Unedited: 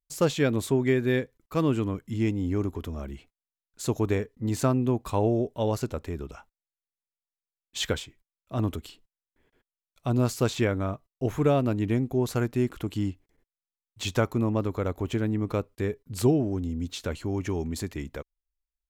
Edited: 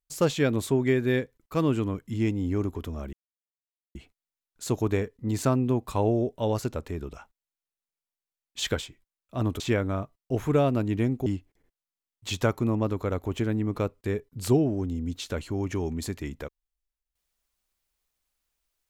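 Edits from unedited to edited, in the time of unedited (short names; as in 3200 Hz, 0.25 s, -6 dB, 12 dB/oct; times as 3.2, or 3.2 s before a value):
3.13 insert silence 0.82 s
8.78–10.51 cut
12.17–13 cut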